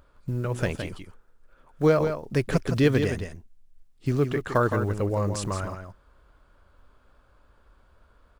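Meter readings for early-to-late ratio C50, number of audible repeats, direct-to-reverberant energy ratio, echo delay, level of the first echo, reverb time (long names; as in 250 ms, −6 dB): no reverb audible, 1, no reverb audible, 165 ms, −7.5 dB, no reverb audible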